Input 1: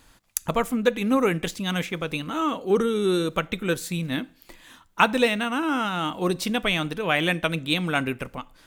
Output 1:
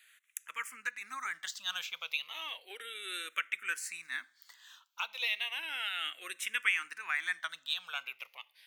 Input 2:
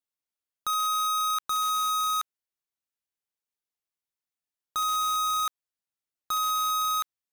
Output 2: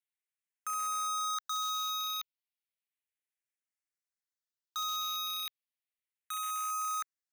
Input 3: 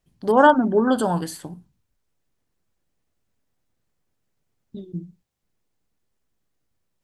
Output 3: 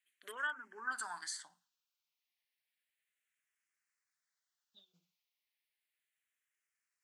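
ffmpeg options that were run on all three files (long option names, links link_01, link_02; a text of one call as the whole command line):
ffmpeg -i in.wav -filter_complex "[0:a]alimiter=limit=-13dB:level=0:latency=1:release=490,highpass=frequency=1900:width_type=q:width=1.8,asplit=2[link_01][link_02];[link_02]afreqshift=-0.33[link_03];[link_01][link_03]amix=inputs=2:normalize=1,volume=-3.5dB" out.wav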